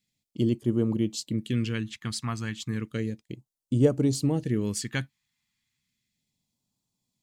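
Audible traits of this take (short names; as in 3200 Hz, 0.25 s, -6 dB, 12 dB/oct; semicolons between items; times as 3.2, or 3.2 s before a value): phasing stages 2, 0.33 Hz, lowest notch 450–1900 Hz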